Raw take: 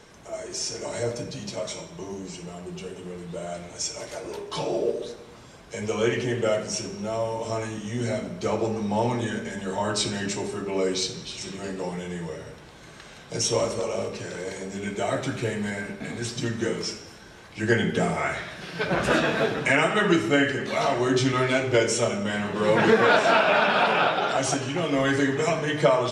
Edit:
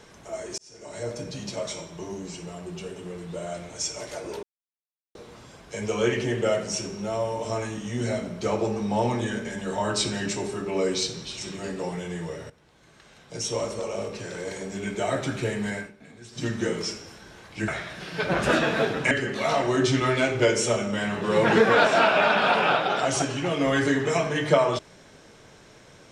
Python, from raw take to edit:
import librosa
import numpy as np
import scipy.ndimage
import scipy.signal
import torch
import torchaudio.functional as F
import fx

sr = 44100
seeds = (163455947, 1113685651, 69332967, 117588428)

y = fx.edit(x, sr, fx.fade_in_span(start_s=0.58, length_s=0.79),
    fx.silence(start_s=4.43, length_s=0.72),
    fx.fade_in_from(start_s=12.5, length_s=2.05, floor_db=-15.5),
    fx.fade_down_up(start_s=15.76, length_s=0.7, db=-15.0, fade_s=0.15),
    fx.cut(start_s=17.68, length_s=0.61),
    fx.cut(start_s=19.72, length_s=0.71), tone=tone)